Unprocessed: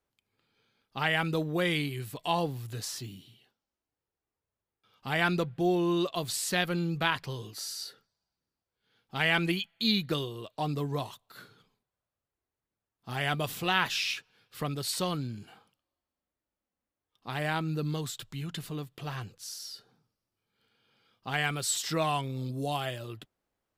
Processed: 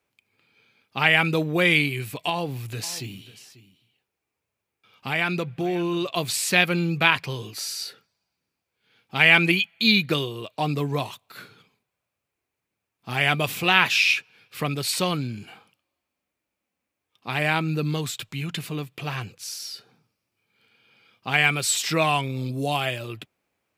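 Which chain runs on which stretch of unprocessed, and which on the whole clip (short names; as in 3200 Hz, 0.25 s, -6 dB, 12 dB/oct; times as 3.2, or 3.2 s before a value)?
2.29–6.11 compressor 2:1, threshold -33 dBFS + echo 0.541 s -17.5 dB
whole clip: HPF 83 Hz; bell 2400 Hz +10.5 dB 0.35 oct; gain +6.5 dB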